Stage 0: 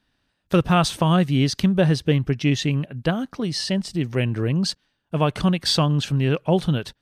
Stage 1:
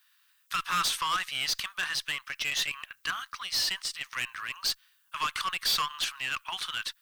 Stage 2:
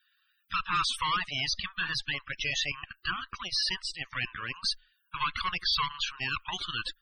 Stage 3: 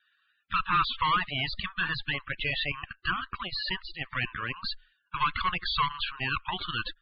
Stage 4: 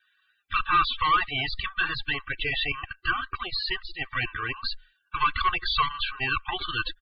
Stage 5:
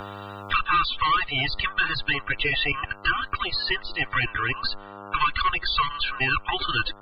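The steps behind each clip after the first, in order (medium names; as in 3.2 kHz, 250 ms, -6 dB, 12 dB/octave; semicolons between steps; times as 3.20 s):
elliptic high-pass 1.1 kHz, stop band 60 dB; valve stage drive 29 dB, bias 0.2; added noise violet -74 dBFS; trim +5 dB
frequency shift -23 Hz; Chebyshev shaper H 6 -15 dB, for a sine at -18 dBFS; loudest bins only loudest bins 64
steep low-pass 4.5 kHz 96 dB/octave; treble shelf 2.9 kHz -10.5 dB; trim +5.5 dB
comb 2.6 ms, depth 96%
mains buzz 100 Hz, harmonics 14, -55 dBFS 0 dB/octave; three bands compressed up and down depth 70%; trim +2.5 dB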